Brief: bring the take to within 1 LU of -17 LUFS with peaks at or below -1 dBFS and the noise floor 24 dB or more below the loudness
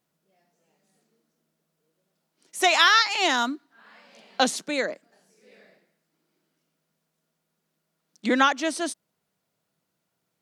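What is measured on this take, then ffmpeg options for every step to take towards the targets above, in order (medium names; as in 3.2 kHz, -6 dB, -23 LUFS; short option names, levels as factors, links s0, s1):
loudness -22.5 LUFS; peak level -5.0 dBFS; loudness target -17.0 LUFS
-> -af "volume=1.88,alimiter=limit=0.891:level=0:latency=1"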